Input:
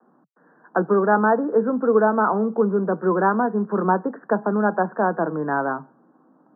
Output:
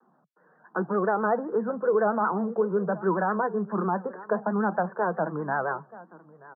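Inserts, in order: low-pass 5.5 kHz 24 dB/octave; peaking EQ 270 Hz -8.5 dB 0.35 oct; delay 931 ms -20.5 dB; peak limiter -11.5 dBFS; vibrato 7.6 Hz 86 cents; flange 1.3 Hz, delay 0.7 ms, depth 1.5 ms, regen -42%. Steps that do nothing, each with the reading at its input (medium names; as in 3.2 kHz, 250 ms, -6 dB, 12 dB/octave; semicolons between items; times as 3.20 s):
low-pass 5.5 kHz: input has nothing above 1.8 kHz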